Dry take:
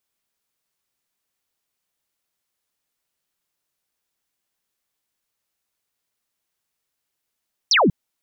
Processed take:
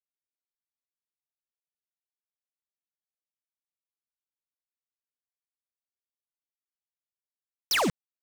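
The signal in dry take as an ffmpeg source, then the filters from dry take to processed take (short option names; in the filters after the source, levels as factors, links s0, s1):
-f lavfi -i "aevalsrc='0.237*clip(t/0.002,0,1)*clip((0.19-t)/0.002,0,1)*sin(2*PI*6200*0.19/log(140/6200)*(exp(log(140/6200)*t/0.19)-1))':d=0.19:s=44100"
-af "aresample=16000,acrusher=bits=3:mix=0:aa=0.000001,aresample=44100,asoftclip=type=hard:threshold=0.0668"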